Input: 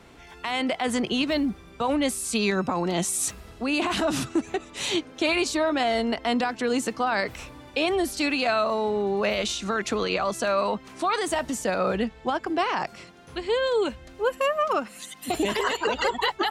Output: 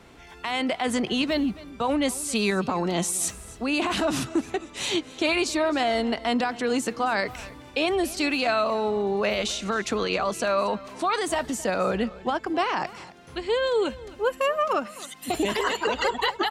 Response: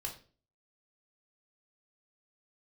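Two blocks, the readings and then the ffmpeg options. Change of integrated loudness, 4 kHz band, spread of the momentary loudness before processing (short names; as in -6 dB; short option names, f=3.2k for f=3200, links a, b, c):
0.0 dB, 0.0 dB, 6 LU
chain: -af "aecho=1:1:266:0.112"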